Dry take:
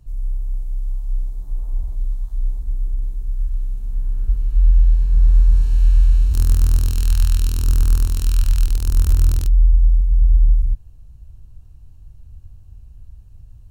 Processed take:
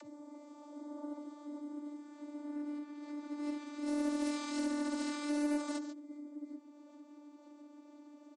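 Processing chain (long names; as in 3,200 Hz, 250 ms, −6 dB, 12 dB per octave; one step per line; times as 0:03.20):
brickwall limiter −14.5 dBFS, peak gain reduction 9.5 dB
high-pass filter 170 Hz 12 dB per octave
parametric band 460 Hz +4.5 dB 1.5 octaves
on a send: backwards echo 340 ms −17 dB
on the sum: time stretch by phase vocoder 0.61×
channel vocoder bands 32, saw 294 Hz
parametric band 2,800 Hz −6 dB 0.26 octaves
single-tap delay 142 ms −10.5 dB
upward compression, threshold −59 dBFS
highs frequency-modulated by the lows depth 0.29 ms
level +10.5 dB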